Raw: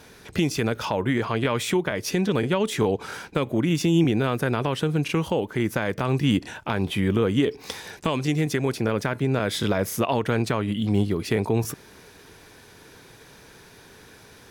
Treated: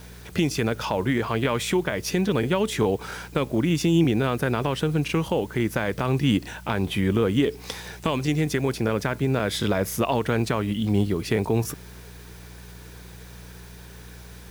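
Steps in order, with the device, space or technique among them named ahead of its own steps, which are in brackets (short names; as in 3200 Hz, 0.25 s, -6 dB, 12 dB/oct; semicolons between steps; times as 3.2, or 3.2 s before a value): video cassette with head-switching buzz (buzz 60 Hz, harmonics 3, -44 dBFS; white noise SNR 29 dB)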